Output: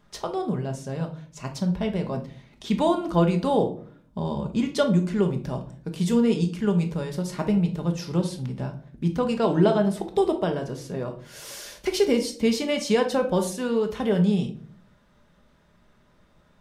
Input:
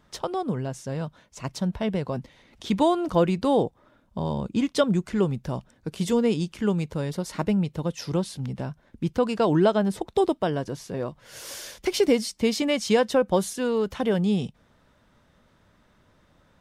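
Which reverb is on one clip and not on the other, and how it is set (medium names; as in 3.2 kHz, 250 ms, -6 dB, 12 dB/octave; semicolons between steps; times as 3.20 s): simulated room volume 500 m³, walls furnished, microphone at 1.3 m; trim -2 dB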